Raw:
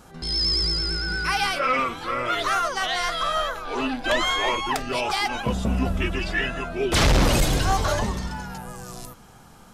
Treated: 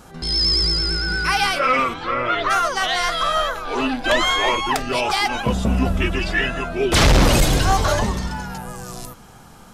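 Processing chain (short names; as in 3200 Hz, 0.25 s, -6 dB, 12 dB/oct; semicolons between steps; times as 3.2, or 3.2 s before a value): 1.93–2.49 LPF 4900 Hz -> 2600 Hz 12 dB/oct; gain +4.5 dB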